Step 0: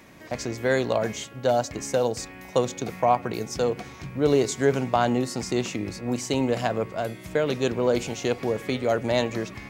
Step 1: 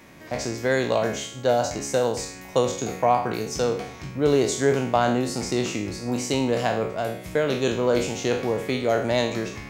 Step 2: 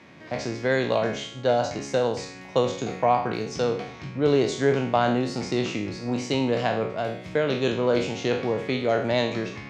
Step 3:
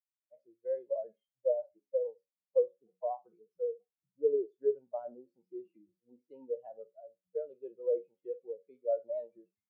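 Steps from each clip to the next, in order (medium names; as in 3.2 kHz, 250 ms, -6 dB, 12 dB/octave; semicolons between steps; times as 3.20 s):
spectral sustain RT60 0.55 s
Chebyshev band-pass 110–4000 Hz, order 2
expander on every frequency bin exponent 3; Butterworth band-pass 510 Hz, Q 2.8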